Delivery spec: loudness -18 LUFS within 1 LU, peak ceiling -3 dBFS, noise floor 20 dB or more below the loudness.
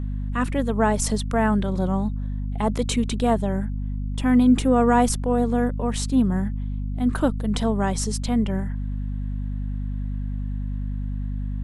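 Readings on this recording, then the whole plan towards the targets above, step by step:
hum 50 Hz; highest harmonic 250 Hz; hum level -25 dBFS; loudness -24.0 LUFS; peak level -6.5 dBFS; loudness target -18.0 LUFS
-> hum notches 50/100/150/200/250 Hz; trim +6 dB; peak limiter -3 dBFS

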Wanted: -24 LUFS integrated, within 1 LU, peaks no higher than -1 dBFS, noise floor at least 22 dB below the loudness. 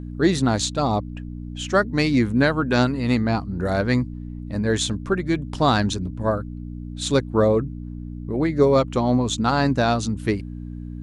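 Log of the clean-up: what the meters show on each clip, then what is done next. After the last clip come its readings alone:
hum 60 Hz; highest harmonic 300 Hz; hum level -30 dBFS; loudness -21.5 LUFS; peak level -5.5 dBFS; loudness target -24.0 LUFS
-> de-hum 60 Hz, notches 5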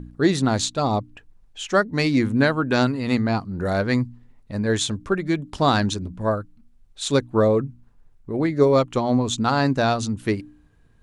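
hum not found; loudness -22.0 LUFS; peak level -5.0 dBFS; loudness target -24.0 LUFS
-> trim -2 dB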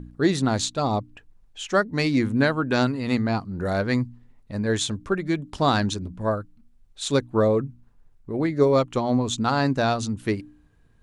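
loudness -24.0 LUFS; peak level -7.0 dBFS; noise floor -57 dBFS

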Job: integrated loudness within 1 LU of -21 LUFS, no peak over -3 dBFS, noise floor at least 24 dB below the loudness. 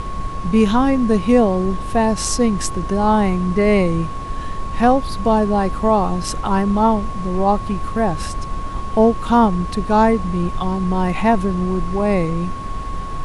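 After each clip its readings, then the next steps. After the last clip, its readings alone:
steady tone 1.1 kHz; tone level -29 dBFS; noise floor -27 dBFS; noise floor target -42 dBFS; loudness -18.0 LUFS; peak level -2.5 dBFS; loudness target -21.0 LUFS
-> band-stop 1.1 kHz, Q 30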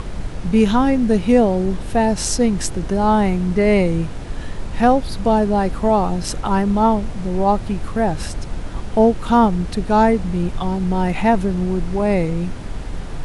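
steady tone not found; noise floor -29 dBFS; noise floor target -42 dBFS
-> noise print and reduce 13 dB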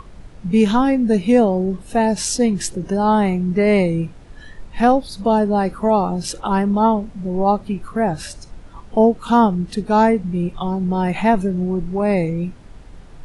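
noise floor -41 dBFS; noise floor target -43 dBFS
-> noise print and reduce 6 dB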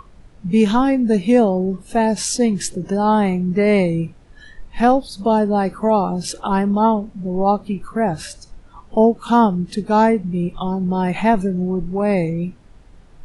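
noise floor -46 dBFS; loudness -18.5 LUFS; peak level -3.0 dBFS; loudness target -21.0 LUFS
-> trim -2.5 dB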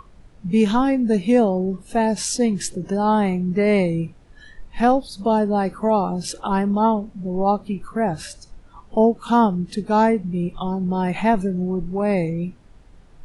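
loudness -21.0 LUFS; peak level -5.5 dBFS; noise floor -49 dBFS

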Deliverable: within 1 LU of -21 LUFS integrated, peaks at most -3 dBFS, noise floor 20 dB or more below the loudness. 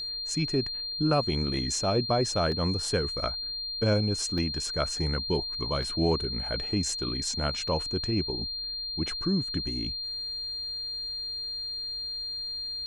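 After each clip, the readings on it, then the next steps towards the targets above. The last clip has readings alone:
dropouts 4; longest dropout 1.2 ms; steady tone 4.2 kHz; tone level -32 dBFS; loudness -29.0 LUFS; peak level -12.5 dBFS; loudness target -21.0 LUFS
-> interpolate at 2.52/4.38/5.83/7.68 s, 1.2 ms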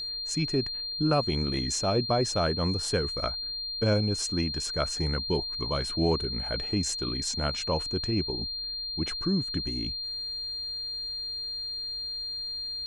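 dropouts 0; steady tone 4.2 kHz; tone level -32 dBFS
-> band-stop 4.2 kHz, Q 30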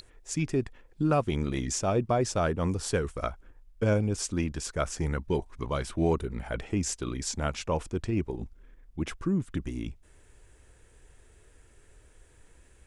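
steady tone not found; loudness -30.5 LUFS; peak level -13.5 dBFS; loudness target -21.0 LUFS
-> trim +9.5 dB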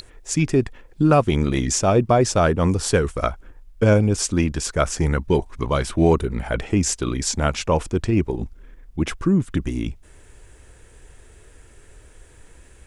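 loudness -21.0 LUFS; peak level -4.0 dBFS; noise floor -49 dBFS

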